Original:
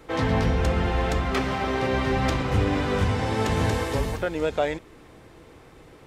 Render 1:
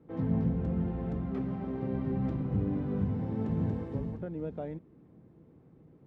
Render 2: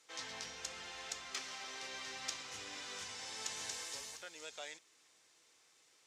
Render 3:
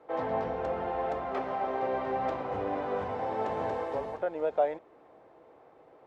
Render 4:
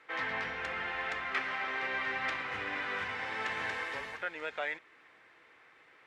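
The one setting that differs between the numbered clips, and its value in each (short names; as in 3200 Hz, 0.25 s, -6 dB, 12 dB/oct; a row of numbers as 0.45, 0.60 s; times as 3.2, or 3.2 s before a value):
band-pass, frequency: 180, 6400, 680, 1900 Hz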